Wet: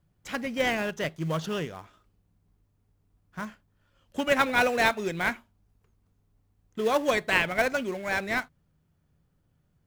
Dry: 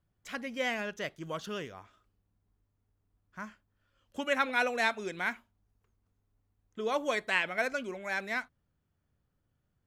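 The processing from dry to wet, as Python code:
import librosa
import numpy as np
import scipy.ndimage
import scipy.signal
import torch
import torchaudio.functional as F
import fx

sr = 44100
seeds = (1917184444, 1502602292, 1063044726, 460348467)

p1 = fx.peak_eq(x, sr, hz=160.0, db=8.5, octaves=0.2)
p2 = fx.sample_hold(p1, sr, seeds[0], rate_hz=2300.0, jitter_pct=20)
p3 = p1 + F.gain(torch.from_numpy(p2), -10.0).numpy()
y = F.gain(torch.from_numpy(p3), 5.0).numpy()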